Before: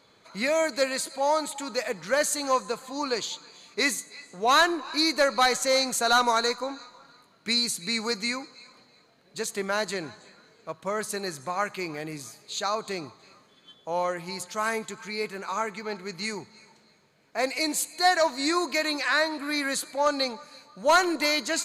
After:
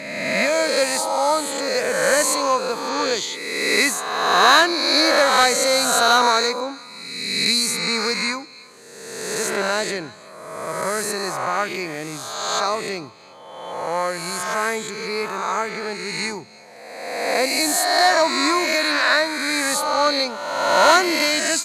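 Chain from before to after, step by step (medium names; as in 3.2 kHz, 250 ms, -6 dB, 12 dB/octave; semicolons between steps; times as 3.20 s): reverse spectral sustain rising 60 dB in 1.52 s; high-pass 51 Hz; trim +3 dB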